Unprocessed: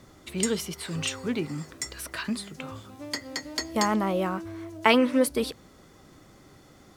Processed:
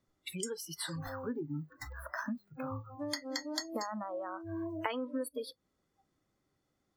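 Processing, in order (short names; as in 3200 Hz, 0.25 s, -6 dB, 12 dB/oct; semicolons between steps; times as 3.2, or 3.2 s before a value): 0.98–2.99 median filter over 15 samples; dynamic EQ 2400 Hz, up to -4 dB, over -46 dBFS, Q 2.3; compressor 10:1, threshold -35 dBFS, peak gain reduction 20 dB; spectral noise reduction 29 dB; gain +2.5 dB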